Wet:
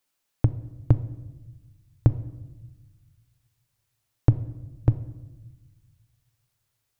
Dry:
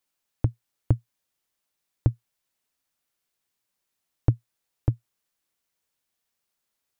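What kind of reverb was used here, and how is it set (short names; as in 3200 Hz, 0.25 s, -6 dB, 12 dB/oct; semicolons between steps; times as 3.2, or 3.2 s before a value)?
shoebox room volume 610 m³, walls mixed, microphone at 0.32 m; gain +3 dB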